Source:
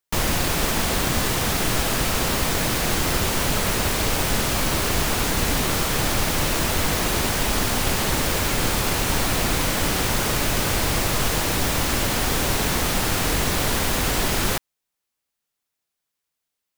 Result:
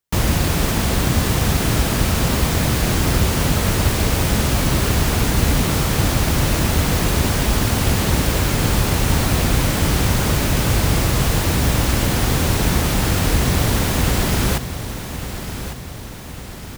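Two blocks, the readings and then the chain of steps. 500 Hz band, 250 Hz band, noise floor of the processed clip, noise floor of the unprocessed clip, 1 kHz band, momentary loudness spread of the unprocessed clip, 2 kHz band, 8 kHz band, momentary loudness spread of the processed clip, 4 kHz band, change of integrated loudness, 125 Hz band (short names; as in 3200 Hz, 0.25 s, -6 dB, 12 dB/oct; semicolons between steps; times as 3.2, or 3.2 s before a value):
+2.5 dB, +6.0 dB, -32 dBFS, -82 dBFS, +1.0 dB, 0 LU, +0.5 dB, +0.5 dB, 10 LU, +0.5 dB, +3.0 dB, +9.5 dB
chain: HPF 45 Hz; low shelf 230 Hz +11.5 dB; feedback echo 1.152 s, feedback 54%, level -11 dB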